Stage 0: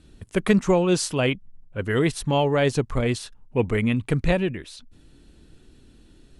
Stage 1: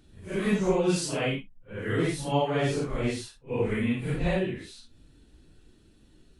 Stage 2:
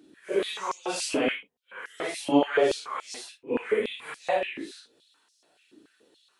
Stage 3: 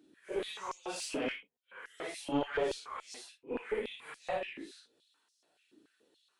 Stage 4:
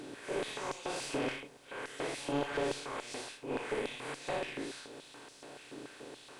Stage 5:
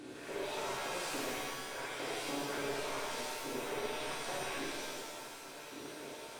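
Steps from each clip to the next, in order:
phase scrambler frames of 0.2 s; gain -5 dB
stepped high-pass 7 Hz 300–5500 Hz
one diode to ground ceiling -17 dBFS; gain -8.5 dB
per-bin compression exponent 0.4; bell 130 Hz +7.5 dB 0.33 oct; gain -5 dB
compressor, threshold -36 dBFS, peak gain reduction 8 dB; shimmer reverb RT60 1.5 s, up +7 st, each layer -2 dB, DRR -3.5 dB; gain -5 dB

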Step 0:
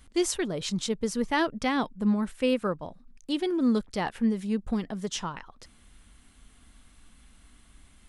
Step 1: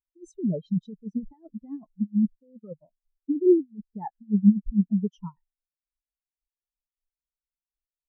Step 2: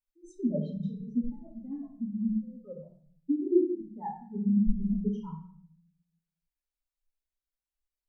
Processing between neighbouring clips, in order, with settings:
negative-ratio compressor -29 dBFS, ratio -0.5; spectral expander 4:1; gain +3 dB
reverb RT60 0.55 s, pre-delay 3 ms, DRR -5.5 dB; gain -9 dB

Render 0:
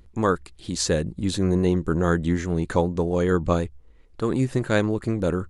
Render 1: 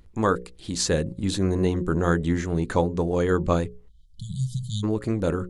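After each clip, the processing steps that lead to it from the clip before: notches 60/120/180/240/300/360/420/480/540 Hz; spectral delete 3.88–4.83, 210–3000 Hz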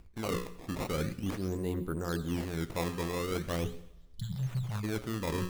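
reverse; compressor 10:1, threshold -30 dBFS, peak gain reduction 15 dB; reverse; decimation with a swept rate 17×, swing 160% 0.42 Hz; reverb, pre-delay 83 ms, DRR 15.5 dB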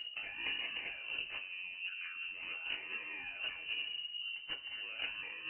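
negative-ratio compressor -43 dBFS, ratio -1; inverted band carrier 2900 Hz; two-slope reverb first 0.23 s, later 1.8 s, DRR 1 dB; gain -2.5 dB

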